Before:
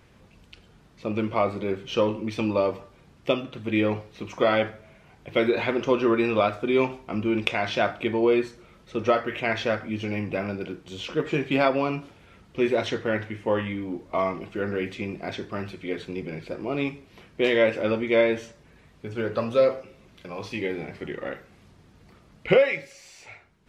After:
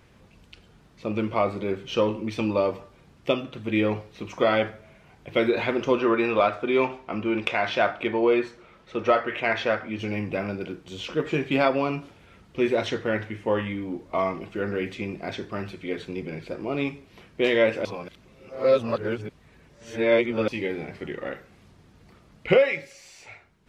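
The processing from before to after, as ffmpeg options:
-filter_complex "[0:a]asettb=1/sr,asplit=3[s0][s1][s2];[s0]atrim=end=5.994[s3];[s1]atrim=start=5.99:end=9.99,asetpts=PTS-STARTPTS,afade=t=in:d=0.004:c=qsin,afade=t=out:st=3.996:d=0.004:c=qsin,asplit=2[s4][s5];[s5]highpass=f=720:p=1,volume=2.82,asoftclip=type=tanh:threshold=0.531[s6];[s4][s6]amix=inputs=2:normalize=0,lowpass=f=2100:p=1,volume=0.501[s7];[s2]atrim=start=9.986[s8];[s3][s7]acrossfade=d=0.004:c1=hsin:c2=qsin[s9];[s9][s8]acrossfade=d=0.004:c1=qsin:c2=hsin,asplit=3[s10][s11][s12];[s10]atrim=end=17.852[s13];[s11]atrim=start=17.848:end=20.482,asetpts=PTS-STARTPTS,areverse[s14];[s12]atrim=start=20.478[s15];[s13][s14]acrossfade=d=0.004:c1=hsin:c2=hsin[s16];[s16][s15]acrossfade=d=0.004:c1=hsin:c2=hsin"

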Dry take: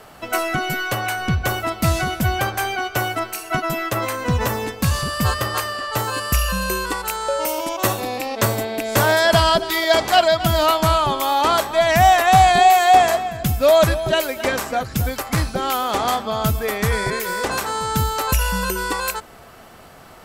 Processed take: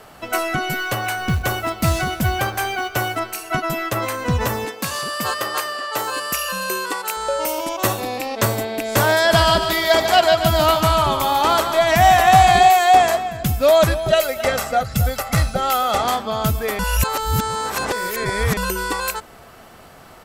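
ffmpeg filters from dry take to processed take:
-filter_complex "[0:a]asettb=1/sr,asplit=3[s0][s1][s2];[s0]atrim=end=0.694[s3];[s1]atrim=start=0.69:end=3.18,asetpts=PTS-STARTPTS,afade=t=in:d=0.004:c=qsin,afade=t=out:st=2.486:d=0.004:c=qsin,acrusher=bits=6:mode=log:mix=0:aa=0.000001[s4];[s2]atrim=start=3.176[s5];[s3][s4]acrossfade=d=0.004:c1=hsin:c2=qsin[s6];[s6][s5]acrossfade=d=0.004:c1=qsin:c2=hsin,asettb=1/sr,asplit=3[s7][s8][s9];[s7]atrim=end=4.654[s10];[s8]atrim=start=4.65:end=7.17,asetpts=PTS-STARTPTS,afade=t=in:d=0.004:c=qsin,afade=t=out:st=2.516:d=0.004:c=qsin,highpass=300[s11];[s9]atrim=start=7.166[s12];[s10][s11]acrossfade=d=0.004:c1=hsin:c2=qsin[s13];[s13][s12]acrossfade=d=0.004:c1=qsin:c2=hsin,asplit=3[s14][s15][s16];[s14]afade=t=out:st=9.3:d=0.02[s17];[s15]aecho=1:1:146|292|438|584|730:0.422|0.169|0.0675|0.027|0.0108,afade=t=in:st=9.3:d=0.02,afade=t=out:st=12.68:d=0.02[s18];[s16]afade=t=in:st=12.68:d=0.02[s19];[s17][s18][s19]amix=inputs=3:normalize=0,asettb=1/sr,asplit=3[s20][s21][s22];[s20]atrim=end=14.084[s23];[s21]atrim=start=14.08:end=16.02,asetpts=PTS-STARTPTS,afade=t=in:d=0.004:c=qsin,afade=t=out:st=1.936:d=0.004:c=qsin,aecho=1:1:1.5:0.65,atrim=end_sample=85554[s24];[s22]atrim=start=16.016[s25];[s23][s24]acrossfade=d=0.004:c1=hsin:c2=qsin[s26];[s26][s25]acrossfade=d=0.004:c1=qsin:c2=hsin,asplit=3[s27][s28][s29];[s27]atrim=end=16.792[s30];[s28]atrim=start=16.788:end=18.572,asetpts=PTS-STARTPTS,areverse[s31];[s29]atrim=start=18.568[s32];[s30][s31]acrossfade=d=0.004:c1=hsin:c2=hsin[s33];[s33][s32]acrossfade=d=0.004:c1=hsin:c2=hsin"

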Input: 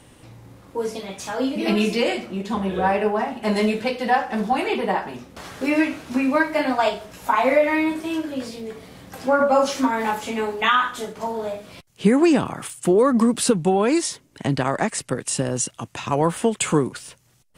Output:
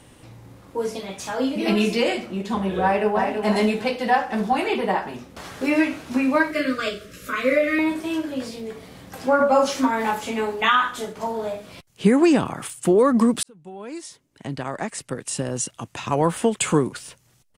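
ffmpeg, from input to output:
-filter_complex "[0:a]asplit=2[s0][s1];[s1]afade=t=in:st=2.82:d=0.01,afade=t=out:st=3.37:d=0.01,aecho=0:1:330|660|990:0.501187|0.125297|0.0313242[s2];[s0][s2]amix=inputs=2:normalize=0,asettb=1/sr,asplit=3[s3][s4][s5];[s3]atrim=end=6.514[s6];[s4]atrim=start=6.51:end=7.79,asetpts=PTS-STARTPTS,afade=t=in:d=0.004:c=qsin,afade=t=out:st=1.276:d=0.004:c=qsin,asuperstop=centerf=830:order=8:qfactor=1.5[s7];[s5]atrim=start=7.786[s8];[s6][s7]acrossfade=d=0.004:c1=hsin:c2=qsin[s9];[s9][s8]acrossfade=d=0.004:c1=qsin:c2=hsin,asplit=2[s10][s11];[s10]atrim=end=13.43,asetpts=PTS-STARTPTS,afade=t=out:st=13.426:d=0.004:c=hsin[s12];[s11]atrim=start=13.43,asetpts=PTS-STARTPTS,afade=t=in:d=2.87[s13];[s12][s13]concat=n=2:v=0:a=1"

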